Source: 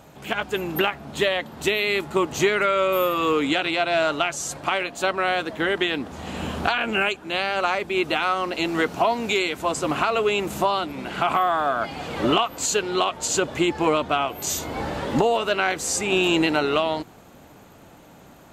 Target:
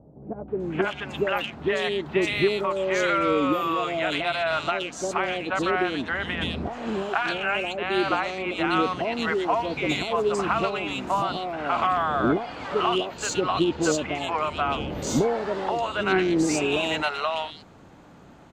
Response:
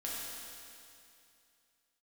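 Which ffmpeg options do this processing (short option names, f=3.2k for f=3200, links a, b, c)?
-filter_complex "[0:a]adynamicsmooth=sensitivity=0.5:basefreq=5.4k,acrossover=split=620|2600[a][b][c];[b]adelay=480[d];[c]adelay=600[e];[a][d][e]amix=inputs=3:normalize=0"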